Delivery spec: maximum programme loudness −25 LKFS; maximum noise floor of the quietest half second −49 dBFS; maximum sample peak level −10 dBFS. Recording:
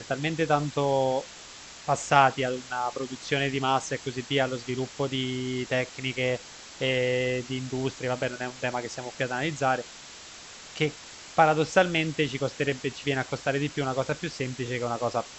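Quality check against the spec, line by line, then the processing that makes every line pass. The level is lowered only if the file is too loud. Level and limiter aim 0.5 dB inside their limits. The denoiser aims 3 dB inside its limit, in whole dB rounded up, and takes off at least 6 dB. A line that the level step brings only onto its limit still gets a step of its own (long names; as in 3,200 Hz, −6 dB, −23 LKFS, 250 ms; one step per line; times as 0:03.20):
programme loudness −27.5 LKFS: in spec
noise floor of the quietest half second −45 dBFS: out of spec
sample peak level −4.5 dBFS: out of spec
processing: broadband denoise 7 dB, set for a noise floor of −45 dBFS
brickwall limiter −10.5 dBFS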